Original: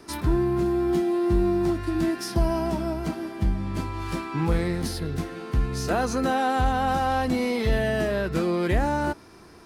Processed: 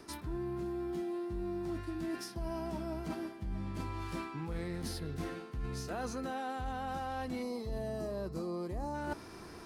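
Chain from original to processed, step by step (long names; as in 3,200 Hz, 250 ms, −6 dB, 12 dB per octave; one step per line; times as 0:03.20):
gain on a spectral selection 0:07.42–0:08.94, 1,300–3,900 Hz −12 dB
reversed playback
downward compressor 8 to 1, threshold −36 dBFS, peak gain reduction 18.5 dB
reversed playback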